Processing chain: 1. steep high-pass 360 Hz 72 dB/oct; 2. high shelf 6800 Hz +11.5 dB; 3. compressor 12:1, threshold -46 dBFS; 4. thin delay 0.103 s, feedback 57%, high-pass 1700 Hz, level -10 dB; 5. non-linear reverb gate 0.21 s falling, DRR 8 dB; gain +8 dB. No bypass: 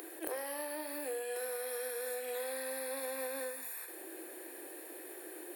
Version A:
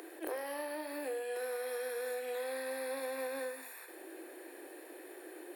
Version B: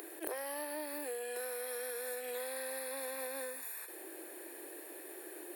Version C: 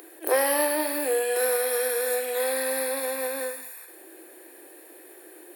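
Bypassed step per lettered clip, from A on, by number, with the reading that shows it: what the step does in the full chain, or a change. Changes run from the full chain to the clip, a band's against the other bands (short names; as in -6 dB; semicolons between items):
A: 2, 8 kHz band -8.0 dB; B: 5, echo-to-direct -6.0 dB to -12.0 dB; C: 3, mean gain reduction 8.0 dB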